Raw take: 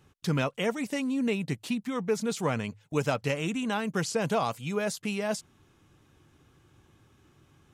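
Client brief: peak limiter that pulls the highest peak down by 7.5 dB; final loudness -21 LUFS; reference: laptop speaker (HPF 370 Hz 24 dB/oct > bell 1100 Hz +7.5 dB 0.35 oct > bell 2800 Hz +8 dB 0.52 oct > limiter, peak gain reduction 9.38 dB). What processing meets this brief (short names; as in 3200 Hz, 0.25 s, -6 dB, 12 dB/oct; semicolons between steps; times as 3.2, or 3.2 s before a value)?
limiter -22 dBFS; HPF 370 Hz 24 dB/oct; bell 1100 Hz +7.5 dB 0.35 oct; bell 2800 Hz +8 dB 0.52 oct; gain +16 dB; limiter -11 dBFS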